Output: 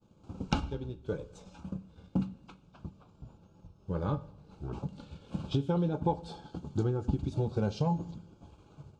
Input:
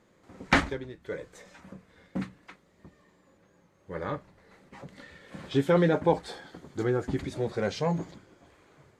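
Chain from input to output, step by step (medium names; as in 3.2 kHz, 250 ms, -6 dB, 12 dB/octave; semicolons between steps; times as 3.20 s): expander -60 dBFS; tone controls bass +13 dB, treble +7 dB; transient shaper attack +3 dB, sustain -4 dB; compression 6:1, threshold -23 dBFS, peak gain reduction 13.5 dB; small resonant body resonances 850/2800 Hz, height 11 dB, ringing for 85 ms; reverberation RT60 0.75 s, pre-delay 3 ms, DRR 14 dB; 2.41–4.79 s: ever faster or slower copies 229 ms, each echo -5 st, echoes 3, each echo -6 dB; Butterworth band-stop 1.9 kHz, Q 2; distance through air 88 m; trim -3 dB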